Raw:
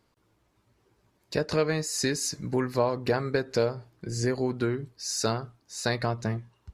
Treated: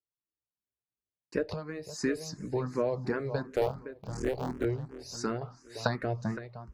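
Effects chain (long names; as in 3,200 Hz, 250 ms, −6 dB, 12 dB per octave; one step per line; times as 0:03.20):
0:03.55–0:04.65: sub-harmonics by changed cycles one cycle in 3, muted
0:05.41–0:05.87: parametric band 1,500 Hz +14.5 dB 3 octaves
feedback echo with a low-pass in the loop 515 ms, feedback 31%, low-pass 4,500 Hz, level −14 dB
downward expander −45 dBFS
high-shelf EQ 2,500 Hz −11.5 dB
0:01.49–0:02.02: downward compressor 6 to 1, threshold −31 dBFS, peak gain reduction 10.5 dB
frequency shifter mixed with the dry sound +2.8 Hz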